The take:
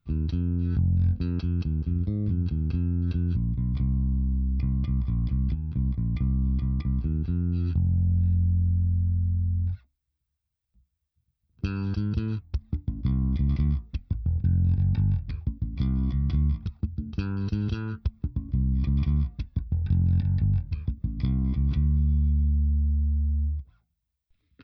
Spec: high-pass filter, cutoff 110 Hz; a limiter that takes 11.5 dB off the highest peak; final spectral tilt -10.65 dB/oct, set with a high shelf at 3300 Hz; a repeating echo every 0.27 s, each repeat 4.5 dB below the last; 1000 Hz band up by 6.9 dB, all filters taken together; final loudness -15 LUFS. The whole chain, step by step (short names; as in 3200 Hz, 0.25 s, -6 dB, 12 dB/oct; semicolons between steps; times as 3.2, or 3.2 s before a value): HPF 110 Hz; bell 1000 Hz +9 dB; high shelf 3300 Hz -3.5 dB; limiter -27.5 dBFS; feedback echo 0.27 s, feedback 60%, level -4.5 dB; gain +20 dB